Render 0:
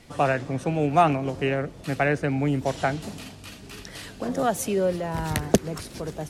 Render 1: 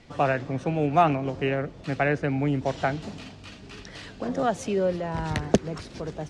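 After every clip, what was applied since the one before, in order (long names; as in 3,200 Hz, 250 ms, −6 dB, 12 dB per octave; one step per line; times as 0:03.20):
Bessel low-pass filter 5,100 Hz, order 4
level −1 dB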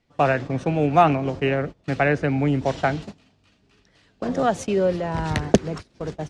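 noise gate −34 dBFS, range −21 dB
level +4 dB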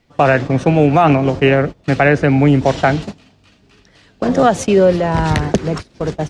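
boost into a limiter +11 dB
level −1 dB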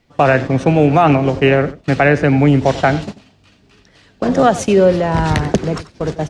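single-tap delay 91 ms −16.5 dB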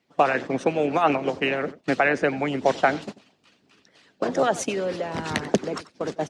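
harmonic and percussive parts rebalanced harmonic −13 dB
high-pass filter 190 Hz 12 dB per octave
level −4 dB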